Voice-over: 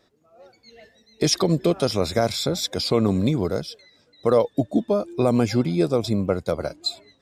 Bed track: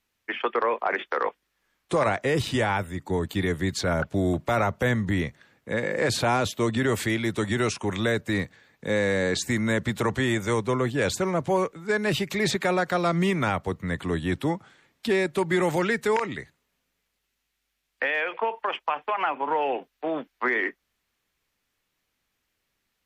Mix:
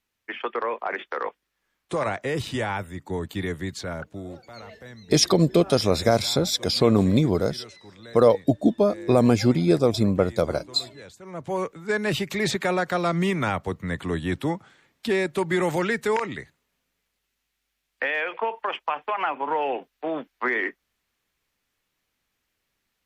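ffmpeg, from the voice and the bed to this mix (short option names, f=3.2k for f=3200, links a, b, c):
-filter_complex "[0:a]adelay=3900,volume=1.5dB[a];[1:a]volume=17dB,afade=t=out:st=3.47:d=0.98:silence=0.141254,afade=t=in:st=11.22:d=0.56:silence=0.1[b];[a][b]amix=inputs=2:normalize=0"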